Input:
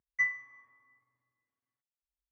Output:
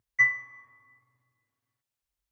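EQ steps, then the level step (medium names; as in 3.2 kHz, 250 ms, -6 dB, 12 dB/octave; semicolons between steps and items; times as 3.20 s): peaking EQ 110 Hz +10 dB 0.57 oct; dynamic bell 580 Hz, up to +8 dB, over -53 dBFS, Q 1.1; +6.5 dB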